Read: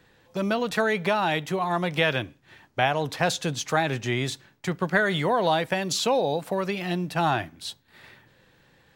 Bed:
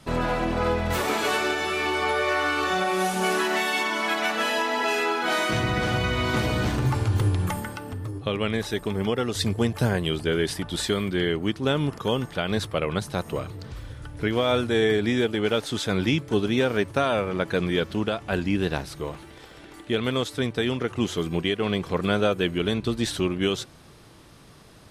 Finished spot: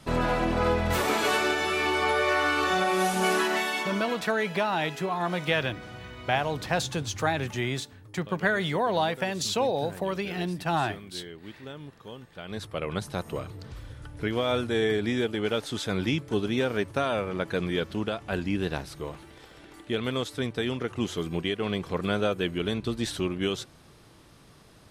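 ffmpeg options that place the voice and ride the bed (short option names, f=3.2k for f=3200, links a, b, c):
-filter_complex "[0:a]adelay=3500,volume=-3dB[a];[1:a]volume=13.5dB,afade=t=out:st=3.36:d=0.92:silence=0.133352,afade=t=in:st=12.31:d=0.68:silence=0.199526[b];[a][b]amix=inputs=2:normalize=0"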